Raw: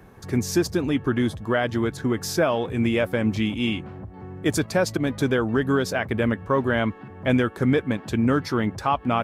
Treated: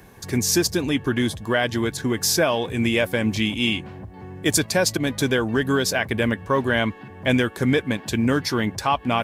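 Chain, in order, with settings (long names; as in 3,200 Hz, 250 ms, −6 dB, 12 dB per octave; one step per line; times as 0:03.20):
high-shelf EQ 2,200 Hz +11 dB
notch filter 1,300 Hz, Q 8.5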